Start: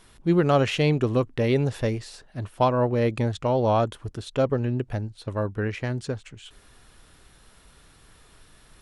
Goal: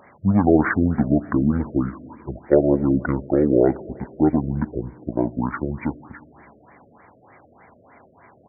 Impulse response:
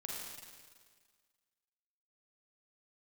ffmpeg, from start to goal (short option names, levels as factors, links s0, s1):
-filter_complex "[0:a]highpass=f=170:w=0.5412,highpass=f=170:w=1.3066,equalizer=f=230:w=0.83:g=-6.5,asplit=2[s0][s1];[s1]acompressor=threshold=0.02:ratio=6,volume=0.794[s2];[s0][s2]amix=inputs=2:normalize=0,atempo=1.8,asplit=2[s3][s4];[1:a]atrim=start_sample=2205,asetrate=48510,aresample=44100[s5];[s4][s5]afir=irnorm=-1:irlink=0,volume=0.211[s6];[s3][s6]amix=inputs=2:normalize=0,asetrate=25442,aresample=44100,afftfilt=real='re*lt(b*sr/1024,650*pow(2400/650,0.5+0.5*sin(2*PI*3.3*pts/sr)))':imag='im*lt(b*sr/1024,650*pow(2400/650,0.5+0.5*sin(2*PI*3.3*pts/sr)))':win_size=1024:overlap=0.75,volume=1.88"